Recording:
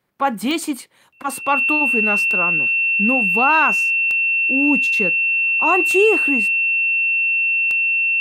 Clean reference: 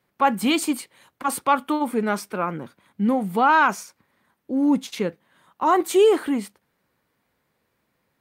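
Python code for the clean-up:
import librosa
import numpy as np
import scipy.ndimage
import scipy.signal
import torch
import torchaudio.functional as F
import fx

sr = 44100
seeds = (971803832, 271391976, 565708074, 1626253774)

y = fx.fix_declick_ar(x, sr, threshold=10.0)
y = fx.notch(y, sr, hz=2700.0, q=30.0)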